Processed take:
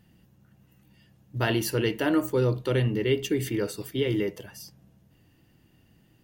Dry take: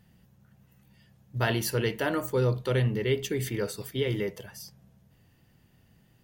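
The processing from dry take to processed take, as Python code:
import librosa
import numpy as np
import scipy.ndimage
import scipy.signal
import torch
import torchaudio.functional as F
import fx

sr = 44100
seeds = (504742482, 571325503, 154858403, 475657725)

y = fx.small_body(x, sr, hz=(310.0, 2800.0), ring_ms=40, db=9)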